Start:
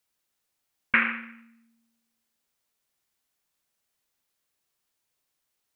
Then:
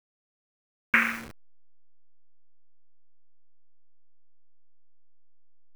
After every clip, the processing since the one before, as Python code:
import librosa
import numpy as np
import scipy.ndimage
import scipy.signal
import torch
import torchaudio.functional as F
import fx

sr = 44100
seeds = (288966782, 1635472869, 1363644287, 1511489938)

y = fx.delta_hold(x, sr, step_db=-36.0)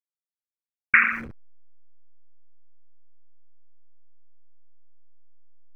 y = fx.envelope_sharpen(x, sr, power=2.0)
y = y * librosa.db_to_amplitude(5.0)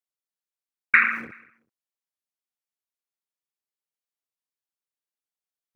y = scipy.signal.sosfilt(scipy.signal.butter(2, 200.0, 'highpass', fs=sr, output='sos'), x)
y = fx.cheby_harmonics(y, sr, harmonics=(4,), levels_db=(-39,), full_scale_db=-1.0)
y = fx.echo_feedback(y, sr, ms=190, feedback_pct=34, wet_db=-22.0)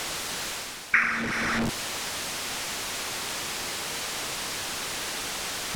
y = x + 0.5 * 10.0 ** (-22.5 / 20.0) * np.sign(x)
y = fx.rider(y, sr, range_db=10, speed_s=0.5)
y = fx.air_absorb(y, sr, metres=53.0)
y = y * librosa.db_to_amplitude(1.5)